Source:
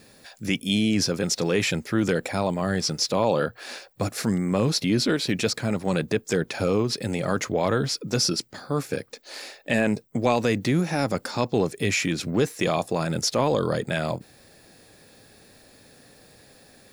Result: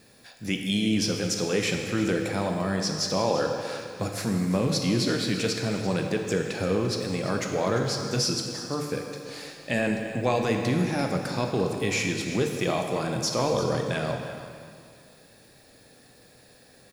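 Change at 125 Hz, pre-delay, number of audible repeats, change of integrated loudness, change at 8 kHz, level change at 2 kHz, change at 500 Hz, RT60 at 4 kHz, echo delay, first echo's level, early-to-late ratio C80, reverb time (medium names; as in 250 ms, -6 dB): -1.5 dB, 7 ms, 1, -2.0 dB, -2.0 dB, -2.0 dB, -2.0 dB, 2.0 s, 344 ms, -14.0 dB, 4.5 dB, 2.2 s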